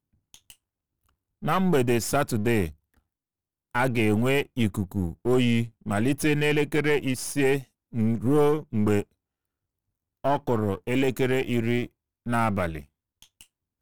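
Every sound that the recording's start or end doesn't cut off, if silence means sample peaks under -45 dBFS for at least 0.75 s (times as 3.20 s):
1.42–2.73 s
3.75–9.03 s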